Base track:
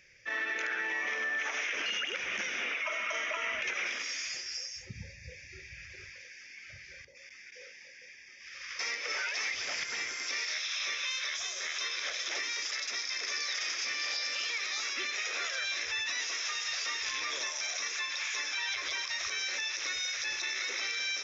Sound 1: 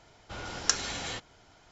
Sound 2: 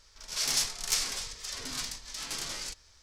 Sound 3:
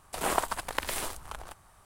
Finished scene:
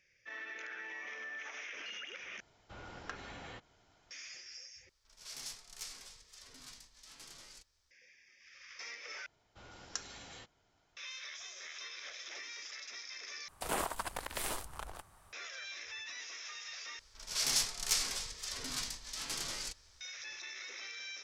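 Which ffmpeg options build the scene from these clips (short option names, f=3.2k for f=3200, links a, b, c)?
-filter_complex "[1:a]asplit=2[a][b];[2:a]asplit=2[c][d];[0:a]volume=-11.5dB[e];[a]acrossover=split=2800[f][g];[g]acompressor=threshold=-54dB:ratio=4:attack=1:release=60[h];[f][h]amix=inputs=2:normalize=0[i];[c]acrusher=bits=11:mix=0:aa=0.000001[j];[3:a]alimiter=limit=-18.5dB:level=0:latency=1:release=117[k];[e]asplit=6[l][m][n][o][p][q];[l]atrim=end=2.404[r];[i]atrim=end=1.71,asetpts=PTS-STARTPTS,volume=-9.5dB[s];[m]atrim=start=4.106:end=4.894[t];[j]atrim=end=3.02,asetpts=PTS-STARTPTS,volume=-17dB[u];[n]atrim=start=7.906:end=9.264[v];[b]atrim=end=1.71,asetpts=PTS-STARTPTS,volume=-15dB[w];[o]atrim=start=10.966:end=13.484[x];[k]atrim=end=1.85,asetpts=PTS-STARTPTS,volume=-3.5dB[y];[p]atrim=start=15.326:end=16.994[z];[d]atrim=end=3.02,asetpts=PTS-STARTPTS,volume=-3dB[aa];[q]atrim=start=20.006[ab];[r][s]acrossfade=d=0.004:c1=hsin:c2=hsin[ac];[ac][t]acrossfade=d=0.004:c1=hsin:c2=hsin[ad];[ad][u]acrossfade=d=0.004:c1=hsin:c2=hsin[ae];[ae][v]acrossfade=d=0.004:c1=hsin:c2=hsin[af];[af][w]acrossfade=d=0.004:c1=hsin:c2=hsin[ag];[ag][x]acrossfade=d=0.004:c1=hsin:c2=hsin[ah];[ah][y]acrossfade=d=0.004:c1=hsin:c2=hsin[ai];[ai][z]acrossfade=d=0.004:c1=hsin:c2=hsin[aj];[aj][aa]acrossfade=d=0.004:c1=hsin:c2=hsin[ak];[ak][ab]acrossfade=d=0.004:c1=hsin:c2=hsin"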